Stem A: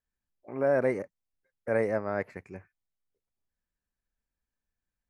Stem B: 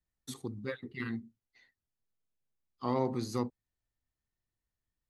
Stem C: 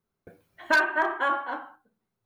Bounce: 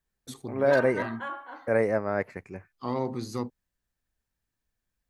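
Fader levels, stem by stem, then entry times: +3.0 dB, +1.0 dB, -10.5 dB; 0.00 s, 0.00 s, 0.00 s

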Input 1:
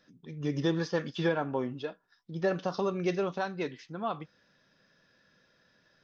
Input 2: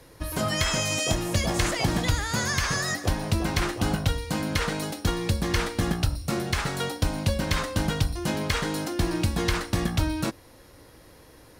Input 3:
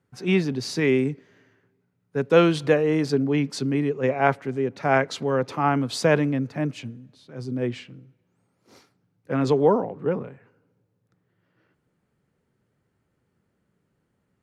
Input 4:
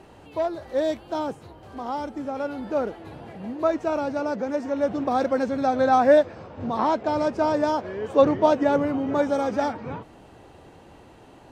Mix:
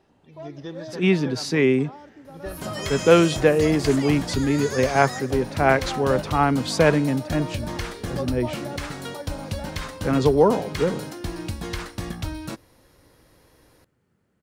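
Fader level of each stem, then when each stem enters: -7.5 dB, -5.5 dB, +2.0 dB, -14.5 dB; 0.00 s, 2.25 s, 0.75 s, 0.00 s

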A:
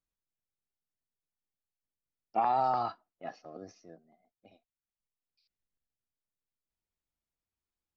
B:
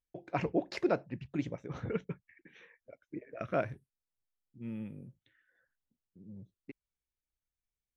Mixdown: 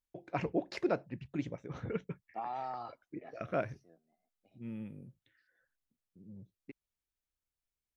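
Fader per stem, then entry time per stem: -11.5 dB, -2.0 dB; 0.00 s, 0.00 s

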